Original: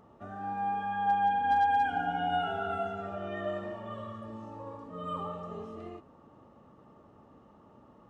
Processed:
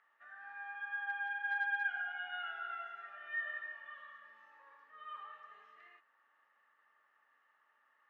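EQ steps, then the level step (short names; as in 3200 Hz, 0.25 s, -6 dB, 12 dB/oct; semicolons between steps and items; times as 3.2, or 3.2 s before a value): ladder band-pass 1900 Hz, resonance 75%; +5.5 dB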